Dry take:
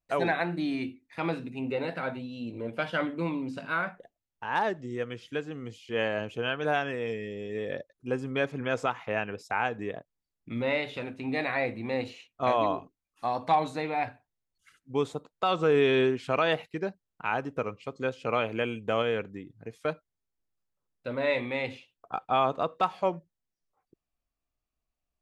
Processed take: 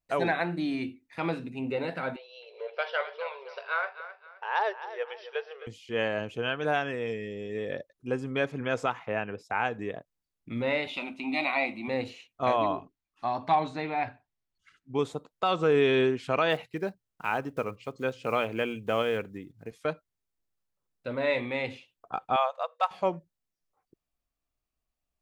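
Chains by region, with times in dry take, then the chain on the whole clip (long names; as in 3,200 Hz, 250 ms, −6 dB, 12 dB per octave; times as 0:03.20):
0:02.16–0:05.67: linear-phase brick-wall band-pass 390–5,900 Hz + repeating echo 262 ms, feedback 34%, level −13 dB
0:08.99–0:09.55: high-pass filter 48 Hz + high-shelf EQ 3,300 Hz −8.5 dB
0:10.87–0:11.88: parametric band 2,200 Hz +14.5 dB 1.6 octaves + phaser with its sweep stopped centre 460 Hz, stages 6
0:12.56–0:14.99: low-pass filter 5,000 Hz + notch filter 500 Hz, Q 6
0:16.50–0:19.72: one scale factor per block 7 bits + mains-hum notches 60/120 Hz
0:22.36–0:22.91: linear-phase brick-wall high-pass 480 Hz + expander for the loud parts, over −35 dBFS
whole clip: no processing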